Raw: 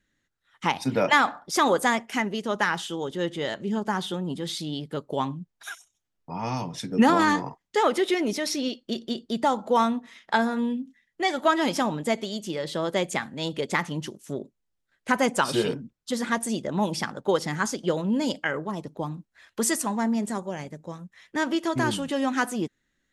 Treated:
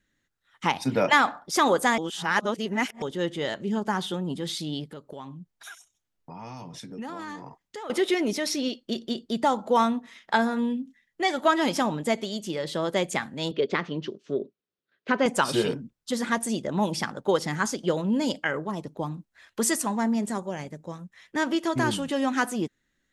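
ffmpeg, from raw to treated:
-filter_complex "[0:a]asettb=1/sr,asplit=3[a][b][c];[a]atrim=end=4.844[d];[b]atrim=start=4.84:end=7.9,asetpts=PTS-STARTPTS,afade=t=in:d=0.004:c=qsin,afade=t=out:st=3.056:d=0.004:c=qsin,acompressor=threshold=-40dB:ratio=3:attack=3.2:release=140:knee=1:detection=peak[e];[c]atrim=start=7.896[f];[d][e]acrossfade=d=0.004:c1=hsin:c2=qsin[g];[g][f]acrossfade=d=0.004:c1=qsin:c2=hsin,asettb=1/sr,asplit=3[h][i][j];[h]atrim=end=13.514[k];[i]atrim=start=13.51:end=15.26,asetpts=PTS-STARTPTS,afade=t=in:d=0.004:c=qsin,afade=t=out:st=1.746:d=0.004:c=qsin,highpass=160,equalizer=f=410:t=q:w=4:g=8,equalizer=f=860:t=q:w=4:g=-8,equalizer=f=2k:t=q:w=4:g=-4,lowpass=f=4.4k:w=0.5412,lowpass=f=4.4k:w=1.3066[l];[j]atrim=start=15.256[m];[k][l]acrossfade=d=0.004:c1=hsin:c2=qsin[n];[n][m]acrossfade=d=0.004:c1=qsin:c2=hsin,asplit=3[o][p][q];[o]atrim=end=1.982[r];[p]atrim=start=1.978:end=3.022,asetpts=PTS-STARTPTS,areverse[s];[q]atrim=start=3.018[t];[r][s]acrossfade=d=0.004:c1=hsin:c2=hsin[u];[u][t]acrossfade=d=0.004:c1=hsin:c2=hsin"

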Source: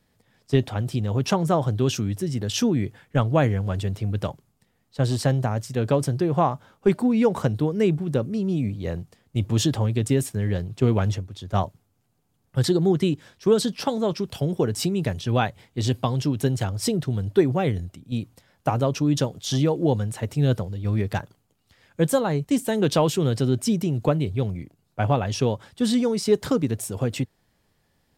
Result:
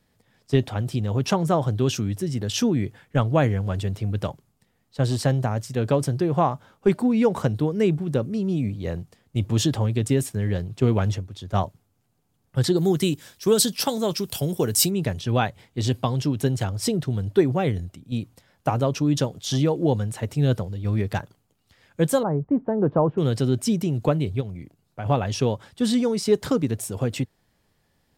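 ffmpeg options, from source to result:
-filter_complex "[0:a]asplit=3[a][b][c];[a]afade=t=out:st=12.76:d=0.02[d];[b]aemphasis=mode=production:type=75fm,afade=t=in:st=12.76:d=0.02,afade=t=out:st=14.89:d=0.02[e];[c]afade=t=in:st=14.89:d=0.02[f];[d][e][f]amix=inputs=3:normalize=0,asettb=1/sr,asplit=3[g][h][i];[g]atrim=end=22.234[j];[h]atrim=start=22.23:end=23.18,asetpts=PTS-STARTPTS,afade=t=in:d=0.004:c=qsin,afade=t=out:st=0.946:d=0.004:c=qsin,lowpass=f=1.2k:w=0.5412,lowpass=f=1.2k:w=1.3066[k];[i]atrim=start=23.176[l];[j][k]acrossfade=d=0.004:c1=hsin:c2=qsin[m];[m][l]acrossfade=d=0.004:c1=qsin:c2=hsin,asplit=3[n][o][p];[n]afade=t=out:st=24.4:d=0.02[q];[o]acompressor=threshold=-34dB:ratio=2:attack=3.2:release=140:knee=1:detection=peak,afade=t=in:st=24.4:d=0.02,afade=t=out:st=25.05:d=0.02[r];[p]afade=t=in:st=25.05:d=0.02[s];[q][r][s]amix=inputs=3:normalize=0"

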